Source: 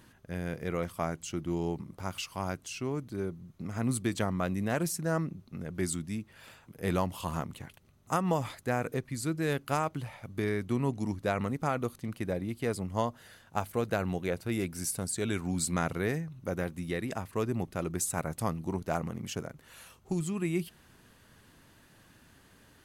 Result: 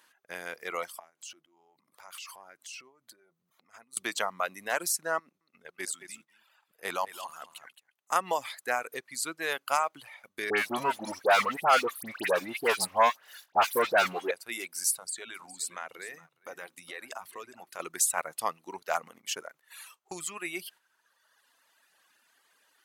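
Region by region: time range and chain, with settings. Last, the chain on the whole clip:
0.99–3.97 s: compression 10:1, threshold -45 dBFS + transient shaper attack -4 dB, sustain +9 dB
5.19–8.16 s: level held to a coarse grid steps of 10 dB + delay 216 ms -7.5 dB
10.50–14.31 s: peaking EQ 7.2 kHz -9 dB 0.63 oct + waveshaping leveller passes 3 + phase dispersion highs, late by 75 ms, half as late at 1.9 kHz
14.93–17.80 s: compression 5:1, threshold -36 dBFS + de-hum 52.09 Hz, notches 7 + delay 413 ms -12 dB
whole clip: reverb removal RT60 1.8 s; high-pass 810 Hz 12 dB/octave; gate -60 dBFS, range -8 dB; trim +7 dB

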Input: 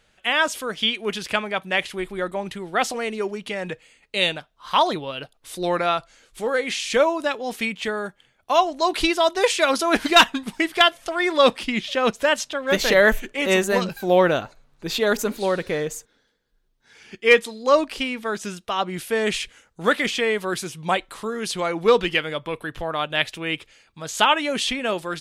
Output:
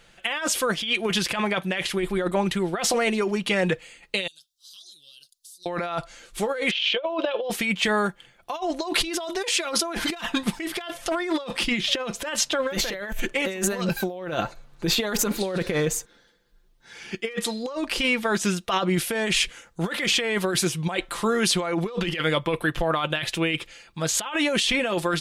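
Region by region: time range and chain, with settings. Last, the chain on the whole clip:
4.27–5.66 s: inverse Chebyshev high-pass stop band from 2.3 kHz + compression 10:1, threshold -50 dBFS
6.71–7.50 s: cabinet simulation 460–3500 Hz, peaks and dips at 550 Hz +9 dB, 810 Hz -4 dB, 1.3 kHz -3 dB, 1.9 kHz -8 dB, 3.1 kHz +9 dB + compressor with a negative ratio -22 dBFS, ratio -0.5
whole clip: comb 5.8 ms, depth 42%; compressor with a negative ratio -27 dBFS, ratio -1; trim +1 dB

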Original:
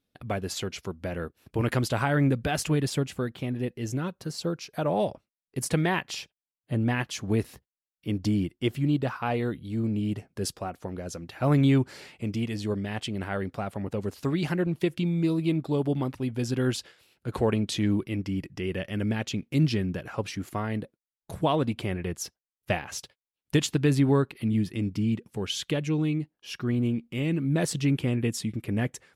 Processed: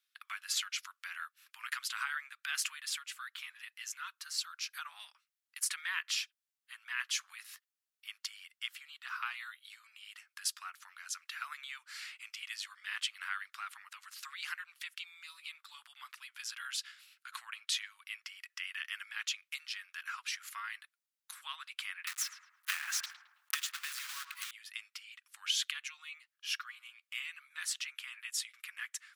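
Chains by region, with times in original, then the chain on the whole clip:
22.07–24.51 s: block-companded coder 3-bit + filtered feedback delay 108 ms, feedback 48%, low-pass 1.4 kHz, level -9.5 dB + three bands compressed up and down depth 70%
whole clip: compression 4:1, threshold -30 dBFS; steep high-pass 1.2 kHz 48 dB/octave; trim +2.5 dB

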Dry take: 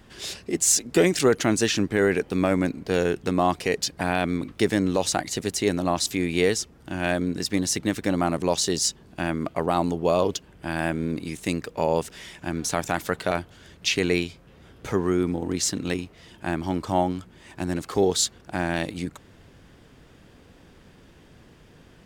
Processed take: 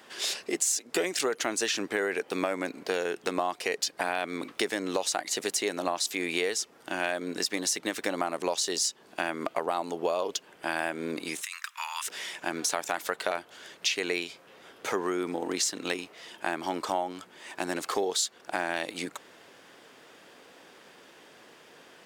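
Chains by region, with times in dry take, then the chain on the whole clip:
11.41–12.07 s: steep high-pass 1.1 kHz 48 dB/octave + band-stop 4.5 kHz, Q 7.8 + compressor with a negative ratio -39 dBFS
whole clip: high-pass 480 Hz 12 dB/octave; compression, threshold -30 dBFS; trim +4.5 dB

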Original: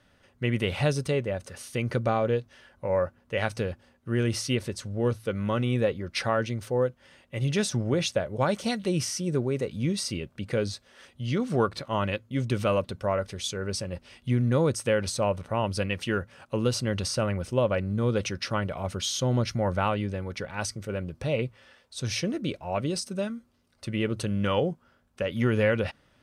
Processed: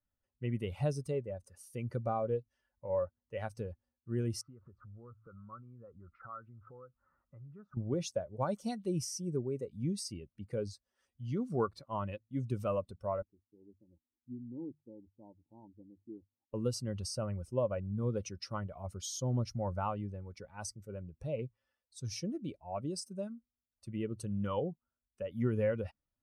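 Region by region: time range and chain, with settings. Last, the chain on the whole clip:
4.41–7.77 s: bass shelf 260 Hz +6 dB + compression, threshold -37 dBFS + resonant low-pass 1.3 kHz, resonance Q 7.2
13.22–16.54 s: cascade formant filter u + hum notches 50/100/150 Hz
whole clip: expander on every frequency bin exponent 1.5; high-order bell 2.5 kHz -10 dB; trim -5.5 dB

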